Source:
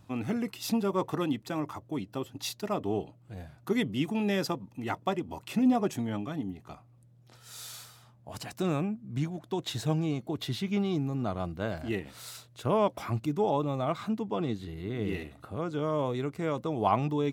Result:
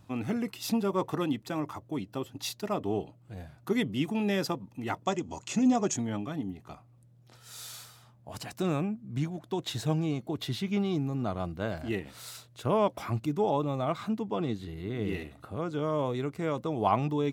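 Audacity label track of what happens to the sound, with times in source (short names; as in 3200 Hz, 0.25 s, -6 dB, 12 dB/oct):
5.050000	5.970000	synth low-pass 6800 Hz, resonance Q 7.6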